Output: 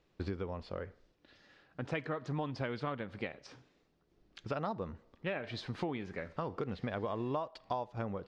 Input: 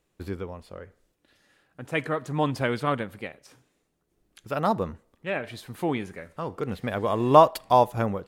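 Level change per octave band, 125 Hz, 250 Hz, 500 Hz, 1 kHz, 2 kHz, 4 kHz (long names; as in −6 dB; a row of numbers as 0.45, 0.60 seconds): −9.0, −10.0, −13.5, −16.5, −9.5, −9.5 decibels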